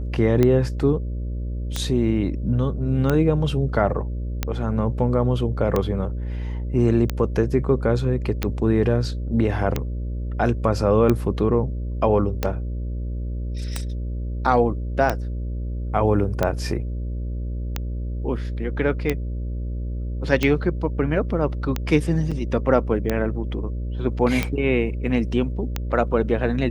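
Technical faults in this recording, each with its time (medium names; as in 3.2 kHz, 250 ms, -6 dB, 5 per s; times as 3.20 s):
buzz 60 Hz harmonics 10 -27 dBFS
tick 45 rpm -8 dBFS
22.31–22.32 s: dropout 5.9 ms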